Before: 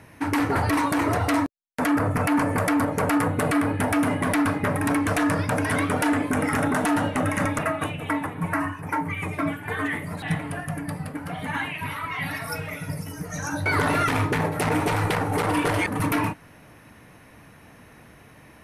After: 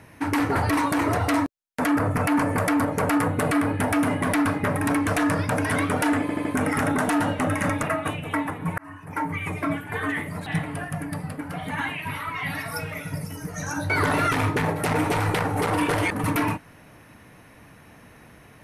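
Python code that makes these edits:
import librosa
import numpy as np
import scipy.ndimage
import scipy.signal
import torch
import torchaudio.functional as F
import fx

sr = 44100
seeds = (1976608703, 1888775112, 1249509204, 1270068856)

y = fx.edit(x, sr, fx.stutter(start_s=6.21, slice_s=0.08, count=4),
    fx.fade_in_span(start_s=8.54, length_s=0.5), tone=tone)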